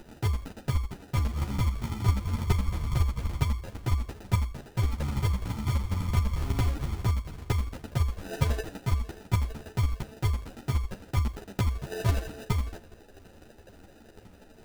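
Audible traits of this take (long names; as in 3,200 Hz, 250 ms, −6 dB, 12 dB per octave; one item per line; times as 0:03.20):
chopped level 12 Hz, depth 60%, duty 10%
phaser sweep stages 12, 2.2 Hz, lowest notch 110–1,600 Hz
aliases and images of a low sample rate 1,100 Hz, jitter 0%
a shimmering, thickened sound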